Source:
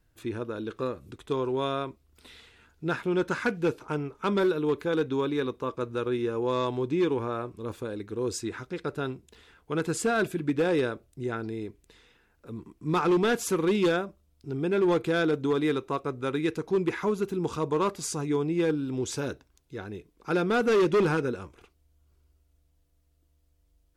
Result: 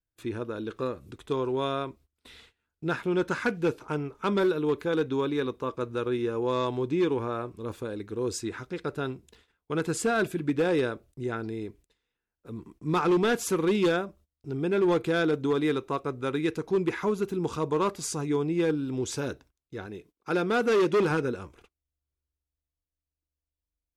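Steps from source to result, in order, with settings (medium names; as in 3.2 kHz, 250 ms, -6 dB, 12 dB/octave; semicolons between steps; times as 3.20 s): 19.86–21.11 s: bass shelf 92 Hz -11.5 dB; gate -53 dBFS, range -23 dB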